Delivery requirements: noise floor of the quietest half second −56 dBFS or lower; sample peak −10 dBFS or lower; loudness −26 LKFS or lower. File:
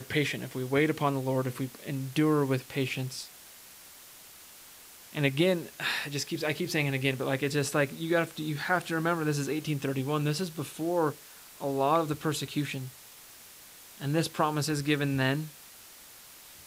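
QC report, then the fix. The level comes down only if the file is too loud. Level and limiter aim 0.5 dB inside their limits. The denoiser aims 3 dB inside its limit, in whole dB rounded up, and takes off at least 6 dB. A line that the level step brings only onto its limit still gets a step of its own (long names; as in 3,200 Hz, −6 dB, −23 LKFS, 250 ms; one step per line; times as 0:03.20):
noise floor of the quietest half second −51 dBFS: out of spec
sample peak −12.0 dBFS: in spec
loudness −30.0 LKFS: in spec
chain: broadband denoise 8 dB, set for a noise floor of −51 dBFS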